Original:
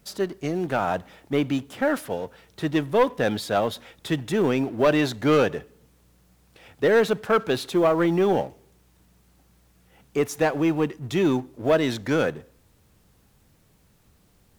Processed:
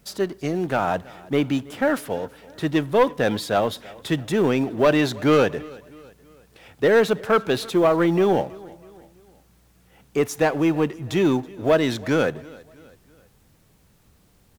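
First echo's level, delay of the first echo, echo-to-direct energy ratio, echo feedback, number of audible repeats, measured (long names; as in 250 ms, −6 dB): −22.5 dB, 326 ms, −21.5 dB, 46%, 2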